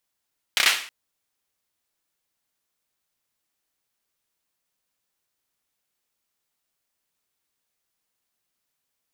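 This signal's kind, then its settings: hand clap length 0.32 s, bursts 4, apart 30 ms, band 2.4 kHz, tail 0.45 s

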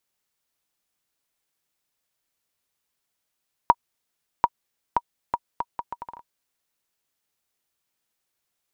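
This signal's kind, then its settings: bouncing ball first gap 0.74 s, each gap 0.71, 953 Hz, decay 46 ms -2.5 dBFS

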